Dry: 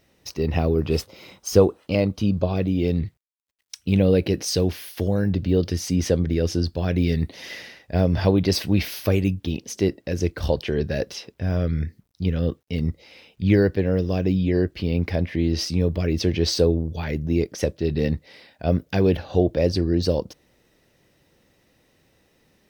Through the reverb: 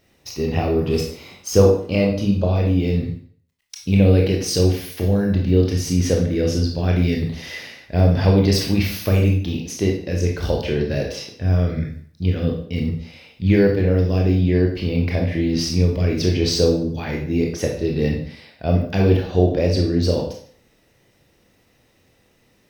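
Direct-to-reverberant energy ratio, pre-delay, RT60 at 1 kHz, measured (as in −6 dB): −0.5 dB, 21 ms, 0.55 s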